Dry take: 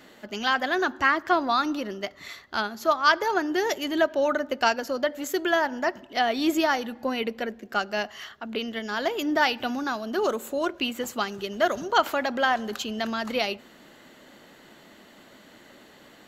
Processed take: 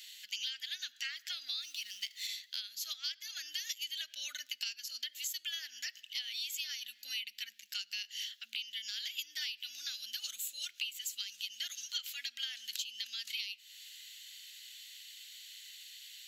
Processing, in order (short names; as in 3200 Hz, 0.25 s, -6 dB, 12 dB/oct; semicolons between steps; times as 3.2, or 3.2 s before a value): 1.62–2.27 G.711 law mismatch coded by mu; inverse Chebyshev high-pass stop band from 1100 Hz, stop band 50 dB; compressor 6:1, threshold -45 dBFS, peak gain reduction 19 dB; soft clip -30 dBFS, distortion -28 dB; gain +8.5 dB